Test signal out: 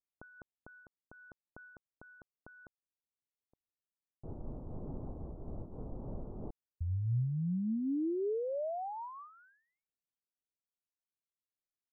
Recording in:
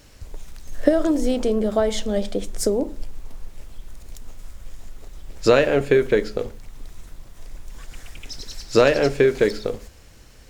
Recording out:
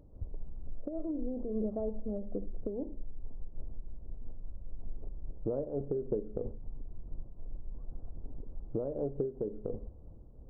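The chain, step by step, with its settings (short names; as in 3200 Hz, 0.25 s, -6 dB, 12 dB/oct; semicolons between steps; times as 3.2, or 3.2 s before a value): Gaussian blur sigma 13 samples; compressor 8:1, threshold -28 dBFS; noise-modulated level, depth 65%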